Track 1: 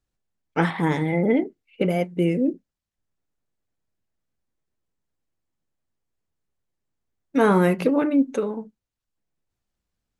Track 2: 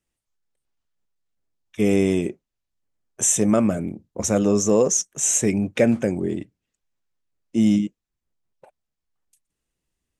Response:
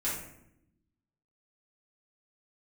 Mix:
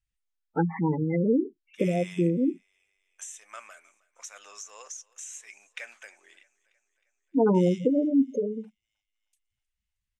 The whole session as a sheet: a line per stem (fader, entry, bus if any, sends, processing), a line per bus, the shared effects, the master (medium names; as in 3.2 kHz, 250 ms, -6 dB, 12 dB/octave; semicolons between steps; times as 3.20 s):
-2.5 dB, 0.00 s, no send, no echo send, spectral gate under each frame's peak -10 dB strong
+0.5 dB, 0.00 s, no send, echo send -23.5 dB, Bessel high-pass 2.2 kHz, order 4; compression 6:1, threshold -29 dBFS, peak gain reduction 12.5 dB; tilt EQ -4 dB/octave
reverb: none
echo: feedback delay 313 ms, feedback 58%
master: none